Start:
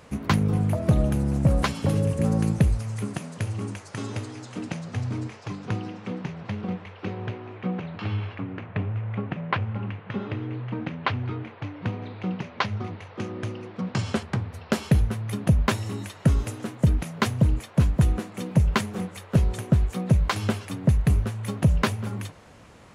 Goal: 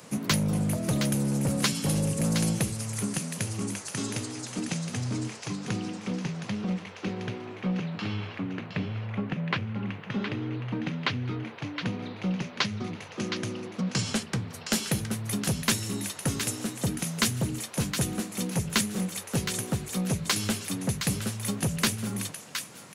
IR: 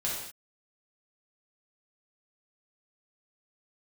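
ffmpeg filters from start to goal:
-filter_complex "[0:a]highpass=frequency=140:width=0.5412,highpass=frequency=140:width=1.3066,bass=frequency=250:gain=5,treble=frequency=4000:gain=11,acrossover=split=540|1300[link_01][link_02][link_03];[link_01]asoftclip=type=tanh:threshold=-23dB[link_04];[link_02]acompressor=threshold=-46dB:ratio=6[link_05];[link_03]aecho=1:1:716:0.473[link_06];[link_04][link_05][link_06]amix=inputs=3:normalize=0"

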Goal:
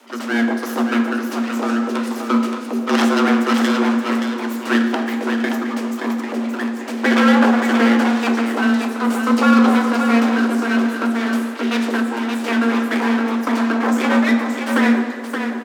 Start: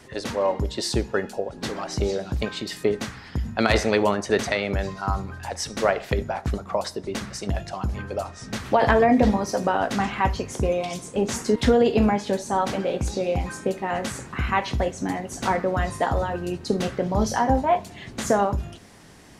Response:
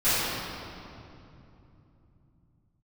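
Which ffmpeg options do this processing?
-filter_complex "[0:a]equalizer=frequency=125:width_type=o:width=1:gain=5,equalizer=frequency=500:width_type=o:width=1:gain=7,equalizer=frequency=8000:width_type=o:width=1:gain=-5,aeval=exprs='abs(val(0))':channel_layout=same,asetrate=54684,aresample=44100,afreqshift=230,aecho=1:1:574:0.501,asplit=2[link_01][link_02];[1:a]atrim=start_sample=2205,asetrate=66150,aresample=44100[link_03];[link_02][link_03]afir=irnorm=-1:irlink=0,volume=-18dB[link_04];[link_01][link_04]amix=inputs=2:normalize=0,volume=-1dB"

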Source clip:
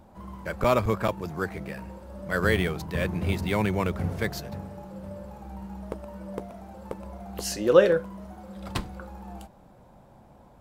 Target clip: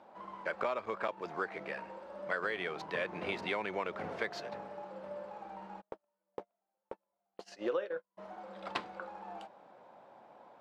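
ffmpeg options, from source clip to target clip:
ffmpeg -i in.wav -filter_complex "[0:a]highpass=480,lowpass=3400,acompressor=threshold=-32dB:ratio=12,asplit=3[link_01][link_02][link_03];[link_01]afade=type=out:start_time=5.8:duration=0.02[link_04];[link_02]agate=range=-41dB:threshold=-37dB:ratio=16:detection=peak,afade=type=in:start_time=5.8:duration=0.02,afade=type=out:start_time=8.17:duration=0.02[link_05];[link_03]afade=type=in:start_time=8.17:duration=0.02[link_06];[link_04][link_05][link_06]amix=inputs=3:normalize=0,volume=1dB" out.wav

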